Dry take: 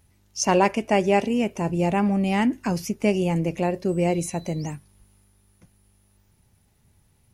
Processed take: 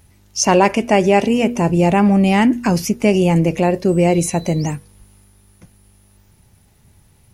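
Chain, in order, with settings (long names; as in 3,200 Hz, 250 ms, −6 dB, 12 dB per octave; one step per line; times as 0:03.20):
hum removal 240.3 Hz, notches 2
in parallel at +1.5 dB: brickwall limiter −17.5 dBFS, peak gain reduction 10 dB
on the sum: level +3 dB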